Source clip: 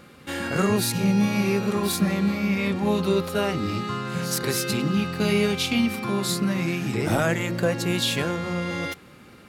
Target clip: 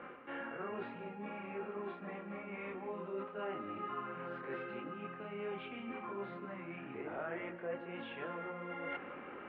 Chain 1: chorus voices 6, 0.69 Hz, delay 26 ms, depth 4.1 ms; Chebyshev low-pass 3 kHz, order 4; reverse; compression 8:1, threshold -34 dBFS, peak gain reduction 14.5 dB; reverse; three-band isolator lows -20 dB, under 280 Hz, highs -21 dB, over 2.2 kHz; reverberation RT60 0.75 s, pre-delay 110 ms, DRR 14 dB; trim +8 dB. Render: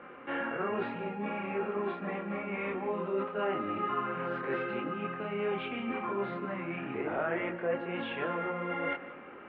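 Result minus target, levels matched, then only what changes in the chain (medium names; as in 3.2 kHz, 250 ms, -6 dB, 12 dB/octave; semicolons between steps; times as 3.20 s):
compression: peak gain reduction -9 dB
change: compression 8:1, threshold -44.5 dBFS, peak gain reduction 24 dB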